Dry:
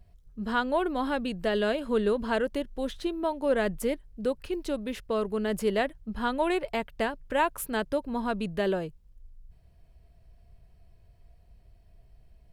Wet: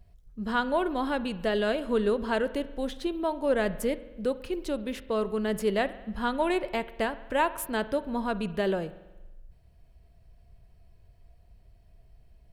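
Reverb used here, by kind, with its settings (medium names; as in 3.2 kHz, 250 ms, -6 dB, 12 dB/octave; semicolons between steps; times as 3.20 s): spring tank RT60 1.1 s, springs 46 ms, chirp 25 ms, DRR 14.5 dB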